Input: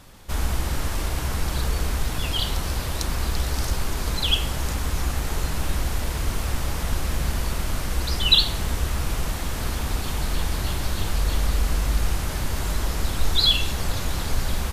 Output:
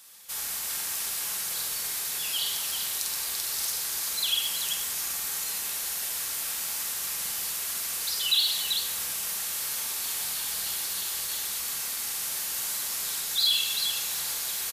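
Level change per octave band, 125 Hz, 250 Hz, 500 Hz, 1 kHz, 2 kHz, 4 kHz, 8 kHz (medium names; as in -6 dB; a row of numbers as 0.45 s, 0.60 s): -31.5 dB, -22.5 dB, -16.0 dB, -10.5 dB, -5.0 dB, -2.5 dB, +6.0 dB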